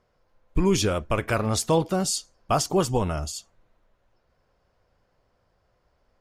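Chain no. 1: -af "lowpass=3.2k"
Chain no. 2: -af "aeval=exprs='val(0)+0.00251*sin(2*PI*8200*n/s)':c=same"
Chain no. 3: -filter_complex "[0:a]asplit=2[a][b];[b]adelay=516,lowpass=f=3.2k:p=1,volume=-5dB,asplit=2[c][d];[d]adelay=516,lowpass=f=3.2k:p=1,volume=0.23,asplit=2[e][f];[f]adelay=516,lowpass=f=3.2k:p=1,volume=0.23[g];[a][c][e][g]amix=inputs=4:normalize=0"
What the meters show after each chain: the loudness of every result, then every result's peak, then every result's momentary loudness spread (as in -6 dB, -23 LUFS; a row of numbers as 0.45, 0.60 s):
-25.5, -25.0, -24.5 LUFS; -10.5, -10.5, -8.5 dBFS; 10, 9, 12 LU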